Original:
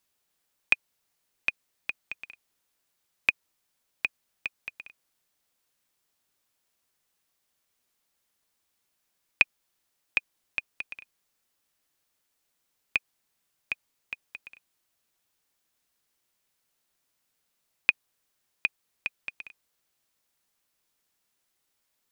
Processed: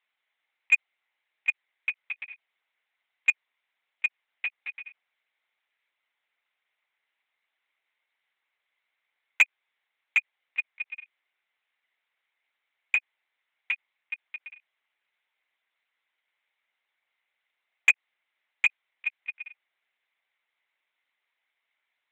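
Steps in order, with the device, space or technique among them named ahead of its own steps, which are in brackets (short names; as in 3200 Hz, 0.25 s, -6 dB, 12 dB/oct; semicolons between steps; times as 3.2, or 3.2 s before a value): talking toy (LPC vocoder at 8 kHz pitch kept; HPF 600 Hz 12 dB/oct; bell 2100 Hz +11 dB 0.41 oct; soft clip -8.5 dBFS, distortion -16 dB)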